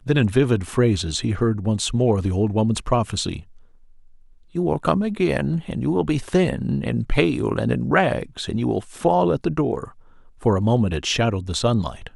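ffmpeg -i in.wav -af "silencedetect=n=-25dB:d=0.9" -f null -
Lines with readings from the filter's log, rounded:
silence_start: 3.37
silence_end: 4.55 | silence_duration: 1.18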